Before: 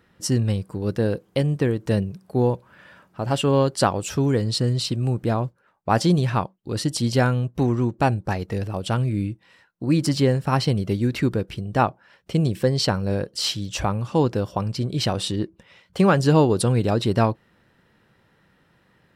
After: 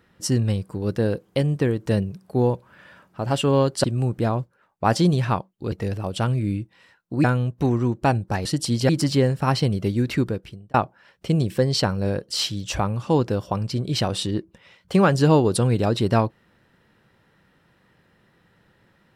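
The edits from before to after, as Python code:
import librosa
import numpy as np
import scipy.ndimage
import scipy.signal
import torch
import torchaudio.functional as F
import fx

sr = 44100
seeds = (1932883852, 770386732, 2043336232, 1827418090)

y = fx.edit(x, sr, fx.cut(start_s=3.84, length_s=1.05),
    fx.swap(start_s=6.77, length_s=0.44, other_s=8.42, other_length_s=1.52),
    fx.fade_out_span(start_s=11.23, length_s=0.56), tone=tone)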